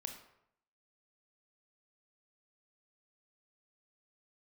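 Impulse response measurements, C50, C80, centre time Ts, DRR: 7.5 dB, 10.0 dB, 21 ms, 4.5 dB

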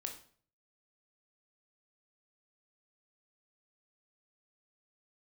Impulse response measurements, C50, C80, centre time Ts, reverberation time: 9.0 dB, 13.5 dB, 17 ms, 0.50 s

